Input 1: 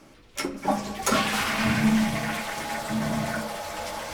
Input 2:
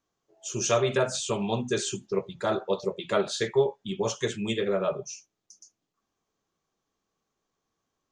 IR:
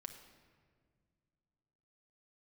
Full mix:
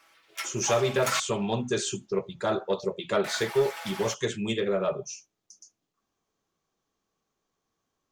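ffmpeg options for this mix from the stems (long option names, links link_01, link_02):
-filter_complex "[0:a]highpass=1400,equalizer=frequency=7400:width=0.56:gain=-7.5,aecho=1:1:6.1:0.52,volume=-1.5dB,asplit=3[link_01][link_02][link_03];[link_01]atrim=end=1.2,asetpts=PTS-STARTPTS,afade=type=out:start_time=1.196:duration=0.004:curve=hsin[link_04];[link_02]atrim=start=1.2:end=3.24,asetpts=PTS-STARTPTS,volume=0[link_05];[link_03]atrim=start=3.24,asetpts=PTS-STARTPTS,afade=type=in:duration=0.004:curve=hsin[link_06];[link_04][link_05][link_06]concat=n=3:v=0:a=1,asplit=2[link_07][link_08];[link_08]volume=-9dB[link_09];[1:a]asoftclip=type=tanh:threshold=-14.5dB,volume=0.5dB[link_10];[2:a]atrim=start_sample=2205[link_11];[link_09][link_11]afir=irnorm=-1:irlink=0[link_12];[link_07][link_10][link_12]amix=inputs=3:normalize=0"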